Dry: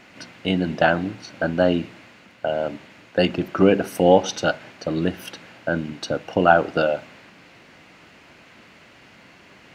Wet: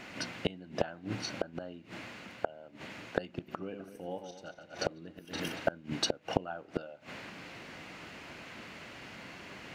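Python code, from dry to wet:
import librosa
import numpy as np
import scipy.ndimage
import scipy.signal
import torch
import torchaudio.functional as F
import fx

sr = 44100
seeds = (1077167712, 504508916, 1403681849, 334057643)

y = fx.reverse_delay_fb(x, sr, ms=117, feedback_pct=48, wet_db=-7, at=(3.26, 5.72))
y = fx.gate_flip(y, sr, shuts_db=-16.0, range_db=-28)
y = y * librosa.db_to_amplitude(1.5)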